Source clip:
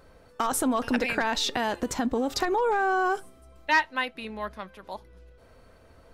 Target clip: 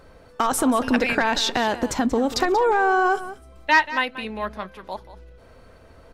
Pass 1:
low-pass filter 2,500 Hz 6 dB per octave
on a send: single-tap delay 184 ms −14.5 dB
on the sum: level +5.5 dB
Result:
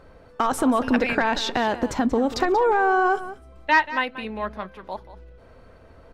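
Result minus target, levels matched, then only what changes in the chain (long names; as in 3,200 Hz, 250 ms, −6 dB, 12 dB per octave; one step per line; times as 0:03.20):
8,000 Hz band −6.5 dB
change: low-pass filter 8,500 Hz 6 dB per octave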